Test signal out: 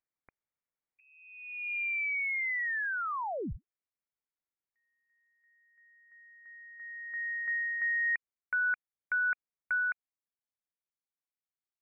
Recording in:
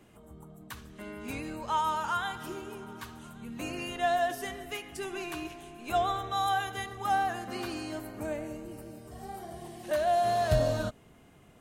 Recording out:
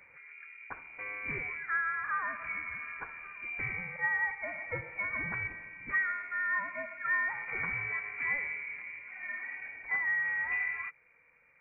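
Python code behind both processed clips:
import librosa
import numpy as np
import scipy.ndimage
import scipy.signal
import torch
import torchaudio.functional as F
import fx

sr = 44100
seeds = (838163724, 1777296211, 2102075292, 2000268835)

y = fx.rider(x, sr, range_db=4, speed_s=0.5)
y = scipy.signal.sosfilt(scipy.signal.butter(4, 180.0, 'highpass', fs=sr, output='sos'), y)
y = fx.freq_invert(y, sr, carrier_hz=2600)
y = F.gain(torch.from_numpy(y), -1.5).numpy()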